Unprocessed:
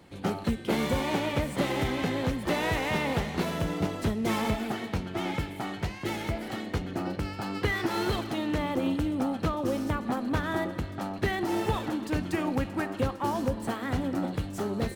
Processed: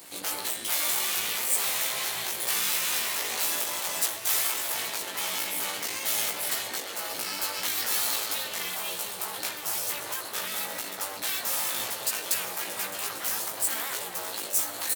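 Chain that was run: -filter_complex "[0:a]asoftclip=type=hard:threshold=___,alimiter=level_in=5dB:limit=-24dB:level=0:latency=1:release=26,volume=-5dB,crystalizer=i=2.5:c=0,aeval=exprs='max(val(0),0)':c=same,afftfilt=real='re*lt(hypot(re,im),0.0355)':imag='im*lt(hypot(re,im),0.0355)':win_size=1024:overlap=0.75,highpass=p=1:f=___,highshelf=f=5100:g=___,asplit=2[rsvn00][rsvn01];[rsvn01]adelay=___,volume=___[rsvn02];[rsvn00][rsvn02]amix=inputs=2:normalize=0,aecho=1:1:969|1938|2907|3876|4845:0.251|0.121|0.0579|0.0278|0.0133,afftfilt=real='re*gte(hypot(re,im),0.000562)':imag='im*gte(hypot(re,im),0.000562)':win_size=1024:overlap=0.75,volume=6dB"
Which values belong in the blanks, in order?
-23dB, 430, 11.5, 17, -2dB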